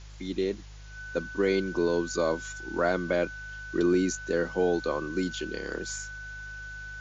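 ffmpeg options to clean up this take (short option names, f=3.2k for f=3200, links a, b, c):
-af "bandreject=f=51.2:t=h:w=4,bandreject=f=102.4:t=h:w=4,bandreject=f=153.6:t=h:w=4,bandreject=f=1.5k:w=30,afwtdn=0.0025"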